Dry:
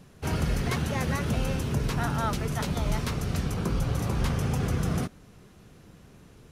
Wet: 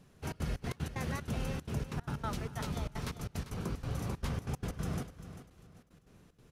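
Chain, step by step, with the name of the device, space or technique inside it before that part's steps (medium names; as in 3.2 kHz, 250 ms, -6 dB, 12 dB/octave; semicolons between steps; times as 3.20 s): trance gate with a delay (trance gate "xxxx.xx.x.x.xxx." 188 bpm -24 dB; feedback delay 395 ms, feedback 31%, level -12.5 dB); trim -8.5 dB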